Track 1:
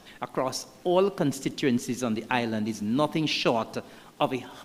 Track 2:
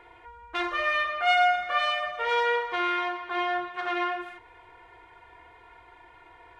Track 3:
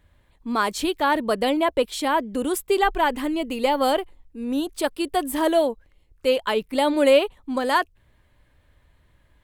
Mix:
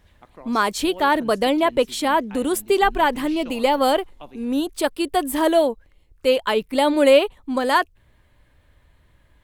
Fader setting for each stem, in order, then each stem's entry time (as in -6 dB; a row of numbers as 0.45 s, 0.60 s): -16.0 dB, mute, +2.5 dB; 0.00 s, mute, 0.00 s